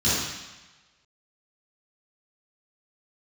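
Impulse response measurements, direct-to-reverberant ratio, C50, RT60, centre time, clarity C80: -12.0 dB, -2.5 dB, 1.1 s, 93 ms, 1.0 dB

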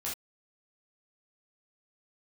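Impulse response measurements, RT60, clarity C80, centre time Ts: no single decay rate, 15.5 dB, 31 ms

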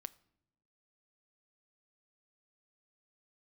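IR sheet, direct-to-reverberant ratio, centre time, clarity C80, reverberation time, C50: 14.0 dB, 2 ms, 24.5 dB, no single decay rate, 21.5 dB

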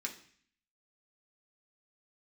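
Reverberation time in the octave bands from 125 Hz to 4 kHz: 0.70 s, 0.70 s, 0.50 s, 0.55 s, 0.65 s, 0.65 s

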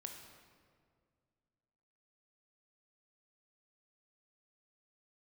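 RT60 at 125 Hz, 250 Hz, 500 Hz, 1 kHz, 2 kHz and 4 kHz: 2.7 s, 2.5 s, 2.2 s, 1.8 s, 1.5 s, 1.2 s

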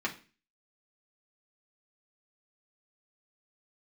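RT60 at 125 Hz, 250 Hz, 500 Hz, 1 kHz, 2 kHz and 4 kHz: 0.50 s, 0.45 s, 0.35 s, 0.35 s, 0.40 s, 0.35 s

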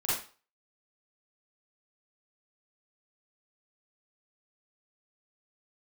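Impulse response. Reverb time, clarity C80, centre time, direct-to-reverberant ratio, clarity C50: 0.40 s, 6.0 dB, 58 ms, -10.0 dB, -0.5 dB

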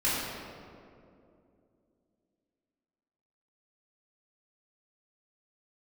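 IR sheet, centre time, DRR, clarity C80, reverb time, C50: 137 ms, -10.5 dB, -0.5 dB, 2.6 s, -2.5 dB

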